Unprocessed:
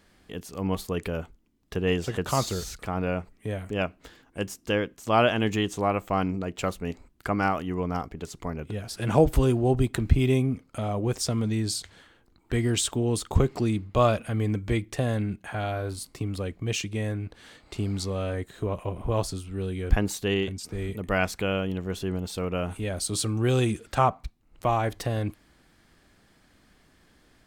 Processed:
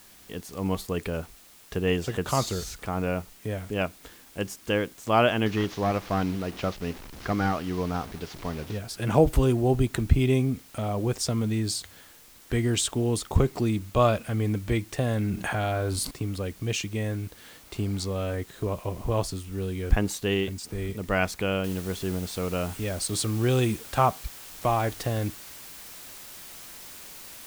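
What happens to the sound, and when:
0:05.46–0:08.78: linear delta modulator 32 kbit/s, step −37 dBFS
0:15.11–0:16.11: envelope flattener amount 70%
0:21.64: noise floor change −53 dB −44 dB

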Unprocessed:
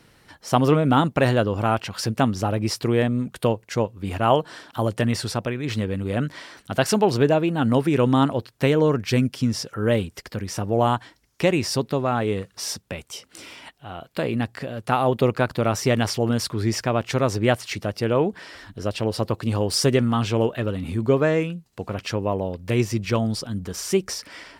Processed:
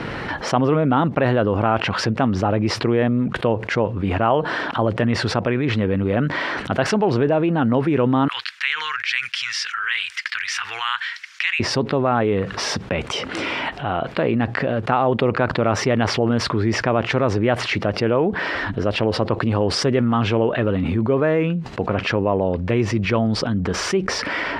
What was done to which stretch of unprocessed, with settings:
0:08.28–0:11.60: inverse Chebyshev high-pass filter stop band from 650 Hz, stop band 50 dB
whole clip: low-pass filter 2,300 Hz 12 dB per octave; low-shelf EQ 110 Hz −8 dB; envelope flattener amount 70%; level −1 dB

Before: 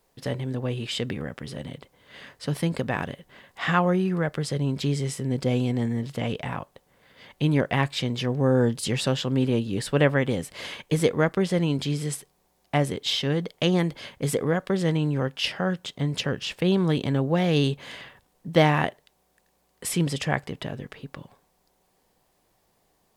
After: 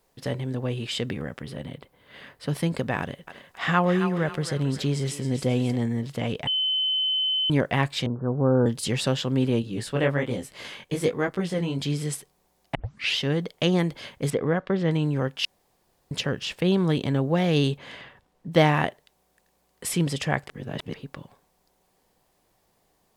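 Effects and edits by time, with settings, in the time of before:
0:01.42–0:02.49: parametric band 6,500 Hz −7.5 dB 1 octave
0:03.00–0:05.76: feedback echo with a high-pass in the loop 271 ms, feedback 43%, high-pass 830 Hz, level −7.5 dB
0:06.47–0:07.50: beep over 3,050 Hz −21.5 dBFS
0:08.06–0:08.66: Butterworth low-pass 1,500 Hz 96 dB per octave
0:09.62–0:11.82: chorus effect 1.2 Hz, delay 15 ms, depth 7.9 ms
0:12.75: tape start 0.43 s
0:14.30–0:14.91: low-pass filter 3,100 Hz
0:15.45–0:16.11: fill with room tone
0:17.78–0:18.52: high-shelf EQ 5,600 Hz −11.5 dB
0:20.48–0:20.94: reverse

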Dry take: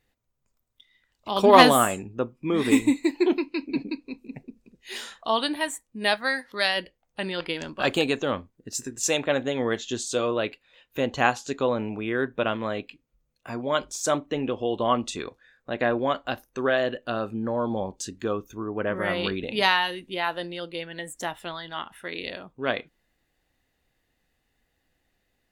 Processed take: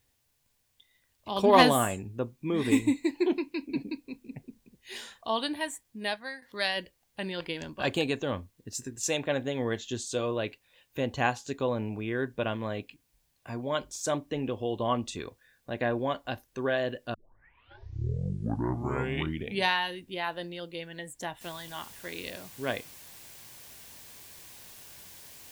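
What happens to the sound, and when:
0:05.85–0:06.42: fade out, to −12 dB
0:17.14: tape start 2.60 s
0:21.41: noise floor change −69 dB −44 dB
whole clip: parametric band 92 Hz +8.5 dB 1.4 octaves; notch filter 1,300 Hz, Q 7.5; level −5.5 dB

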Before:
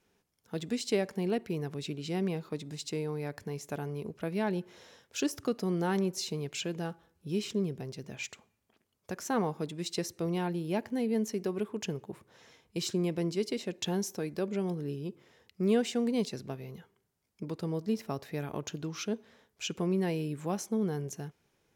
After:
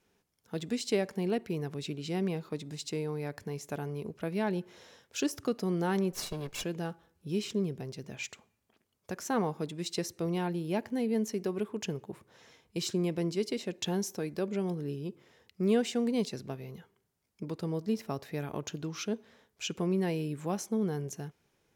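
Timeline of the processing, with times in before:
0:06.12–0:06.64: lower of the sound and its delayed copy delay 1.8 ms

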